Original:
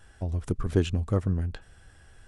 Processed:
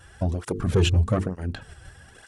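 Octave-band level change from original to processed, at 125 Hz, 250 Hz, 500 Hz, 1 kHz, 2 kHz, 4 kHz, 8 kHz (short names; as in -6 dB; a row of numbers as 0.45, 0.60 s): +4.0, +2.5, +4.0, +7.0, +8.0, +10.5, +9.5 dB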